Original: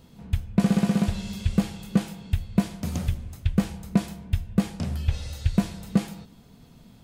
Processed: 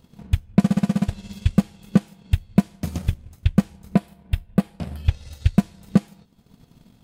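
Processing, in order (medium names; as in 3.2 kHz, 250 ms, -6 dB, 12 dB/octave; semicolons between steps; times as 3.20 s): 3.95–5.05 s: fifteen-band graphic EQ 100 Hz -6 dB, 250 Hz -3 dB, 630 Hz +3 dB, 6.3 kHz -9 dB; transient shaper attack +8 dB, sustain -8 dB; trim -2.5 dB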